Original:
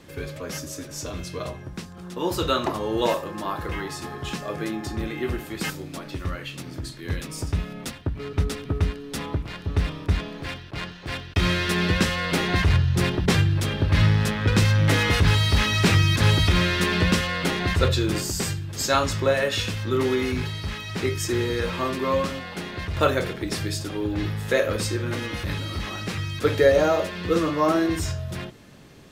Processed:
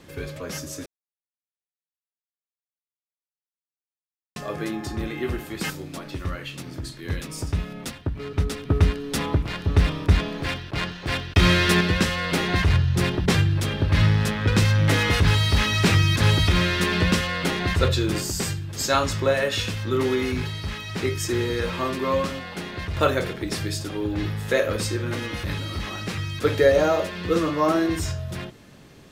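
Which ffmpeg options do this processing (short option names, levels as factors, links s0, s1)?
-filter_complex "[0:a]asettb=1/sr,asplit=3[s0][s1][s2];[s0]atrim=end=8.704[s3];[s1]atrim=start=8.7:end=11.81,asetpts=PTS-STARTPTS,afade=t=in:d=0.004:c=qsin,afade=t=out:st=3.106:d=0.004:c=qsin,acontrast=29[s4];[s2]atrim=start=11.806[s5];[s3][s4]acrossfade=d=0.004:c1=hsin:c2=qsin[s6];[s6][s5]acrossfade=d=0.004:c1=qsin:c2=hsin,asplit=3[s7][s8][s9];[s7]atrim=end=0.86,asetpts=PTS-STARTPTS,afade=t=out:st=0.856:d=0.004:c=hsin[s10];[s8]atrim=start=0.86:end=4.36,asetpts=PTS-STARTPTS,volume=0[s11];[s9]atrim=start=4.36,asetpts=PTS-STARTPTS,afade=t=in:d=0.004:c=hsin[s12];[s10][s11][s12]concat=n=3:v=0:a=1"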